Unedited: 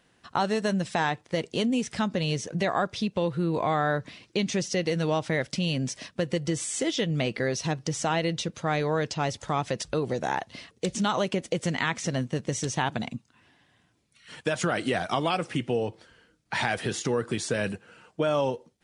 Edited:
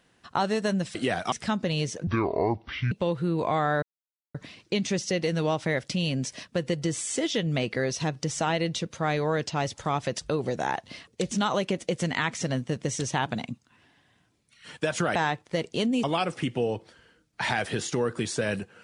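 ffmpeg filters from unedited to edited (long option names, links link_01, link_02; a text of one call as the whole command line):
ffmpeg -i in.wav -filter_complex "[0:a]asplit=8[link_01][link_02][link_03][link_04][link_05][link_06][link_07][link_08];[link_01]atrim=end=0.952[link_09];[link_02]atrim=start=14.788:end=15.162[link_10];[link_03]atrim=start=1.828:end=2.584[link_11];[link_04]atrim=start=2.58:end=3.07,asetpts=PTS-STARTPTS,asetrate=25578,aresample=44100[link_12];[link_05]atrim=start=3.066:end=3.98,asetpts=PTS-STARTPTS,afade=type=out:start_time=0.91:duration=0.004:curve=hsin,apad=pad_dur=0.52[link_13];[link_06]atrim=start=3.98:end=14.792,asetpts=PTS-STARTPTS,afade=type=in:duration=0.004:curve=hsin[link_14];[link_07]atrim=start=0.948:end=1.832[link_15];[link_08]atrim=start=15.158[link_16];[link_09][link_10]acrossfade=duration=0.004:curve1=hsin:curve2=hsin[link_17];[link_17][link_11]acrossfade=duration=0.004:curve1=hsin:curve2=hsin[link_18];[link_18][link_12]acrossfade=duration=0.004:curve1=hsin:curve2=hsin[link_19];[link_13][link_14]concat=n=2:v=0:a=1[link_20];[link_19][link_20]acrossfade=duration=0.004:curve1=hsin:curve2=hsin[link_21];[link_21][link_15]acrossfade=duration=0.004:curve1=hsin:curve2=hsin[link_22];[link_22][link_16]acrossfade=duration=0.004:curve1=hsin:curve2=hsin" out.wav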